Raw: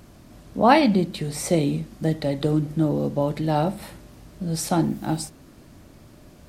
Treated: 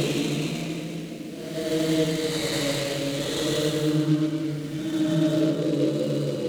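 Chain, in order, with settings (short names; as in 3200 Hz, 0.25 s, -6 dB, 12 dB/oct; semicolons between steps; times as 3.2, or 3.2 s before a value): bin magnitudes rounded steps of 30 dB; weighting filter D; shoebox room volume 1800 m³, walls mixed, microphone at 0.7 m; Paulstretch 4.5×, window 0.25 s, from 1.66; noise-modulated delay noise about 3100 Hz, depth 0.03 ms; gain -1.5 dB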